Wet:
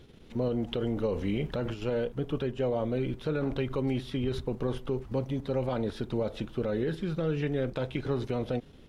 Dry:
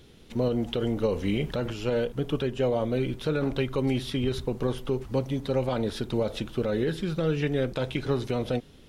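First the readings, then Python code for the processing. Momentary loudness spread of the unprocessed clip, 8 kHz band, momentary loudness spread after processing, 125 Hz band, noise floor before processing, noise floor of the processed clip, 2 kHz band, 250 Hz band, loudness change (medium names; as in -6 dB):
3 LU, no reading, 3 LU, -3.0 dB, -52 dBFS, -52 dBFS, -5.0 dB, -3.0 dB, -3.5 dB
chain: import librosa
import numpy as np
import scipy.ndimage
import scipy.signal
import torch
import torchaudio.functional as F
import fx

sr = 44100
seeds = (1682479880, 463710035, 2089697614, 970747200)

p1 = fx.high_shelf(x, sr, hz=3700.0, db=-9.0)
p2 = fx.level_steps(p1, sr, step_db=18)
p3 = p1 + (p2 * librosa.db_to_amplitude(2.0))
y = p3 * librosa.db_to_amplitude(-6.0)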